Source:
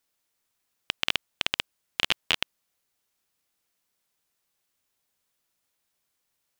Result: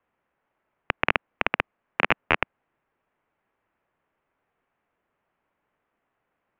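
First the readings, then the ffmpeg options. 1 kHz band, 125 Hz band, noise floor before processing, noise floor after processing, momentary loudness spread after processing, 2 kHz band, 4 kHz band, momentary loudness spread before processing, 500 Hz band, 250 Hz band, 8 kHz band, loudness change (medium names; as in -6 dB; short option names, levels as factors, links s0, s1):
+11.0 dB, +8.5 dB, -78 dBFS, -80 dBFS, 8 LU, +6.0 dB, -9.0 dB, 9 LU, +11.5 dB, +10.0 dB, under -15 dB, +2.5 dB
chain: -filter_complex "[0:a]acrossover=split=500 2100:gain=0.178 1 0.158[s0][s1][s2];[s0][s1][s2]amix=inputs=3:normalize=0,highpass=f=180:t=q:w=0.5412,highpass=f=180:t=q:w=1.307,lowpass=f=3200:t=q:w=0.5176,lowpass=f=3200:t=q:w=0.7071,lowpass=f=3200:t=q:w=1.932,afreqshift=-380,acontrast=37,volume=2.11"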